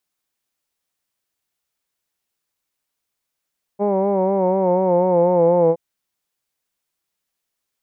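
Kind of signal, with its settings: formant vowel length 1.97 s, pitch 200 Hz, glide -3 st, vibrato 4.1 Hz, vibrato depth 0.6 st, F1 500 Hz, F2 900 Hz, F3 2200 Hz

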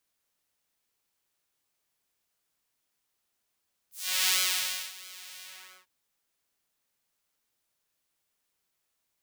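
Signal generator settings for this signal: synth patch with pulse-width modulation F#3, detune 25 cents, noise -15 dB, filter highpass, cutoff 1200 Hz, Q 0.89, filter envelope 3.5 oct, filter decay 0.17 s, filter sustain 40%, attack 0.372 s, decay 0.64 s, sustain -21 dB, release 0.44 s, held 1.51 s, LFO 1.5 Hz, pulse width 39%, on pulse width 19%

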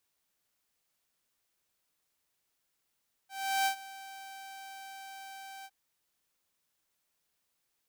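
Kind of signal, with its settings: ADSR saw 778 Hz, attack 0.368 s, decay 94 ms, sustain -19 dB, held 2.36 s, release 48 ms -23 dBFS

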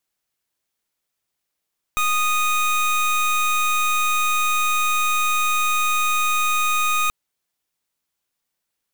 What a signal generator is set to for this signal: pulse 1240 Hz, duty 25% -19.5 dBFS 5.13 s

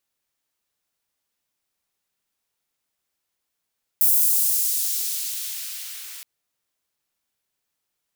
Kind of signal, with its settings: swept filtered noise white, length 2.22 s highpass, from 12000 Hz, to 1700 Hz, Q 0.78, exponential, gain ramp -25 dB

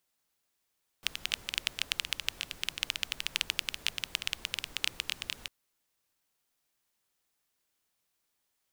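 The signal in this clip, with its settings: rain from filtered ticks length 4.45 s, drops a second 13, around 2900 Hz, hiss -15 dB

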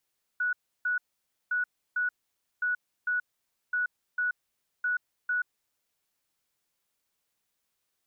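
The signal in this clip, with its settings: beep pattern sine 1470 Hz, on 0.13 s, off 0.32 s, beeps 2, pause 0.53 s, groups 5, -25 dBFS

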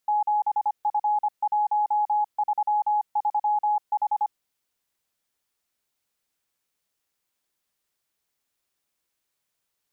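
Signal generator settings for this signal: Morse "7F133H" 25 wpm 839 Hz -19.5 dBFS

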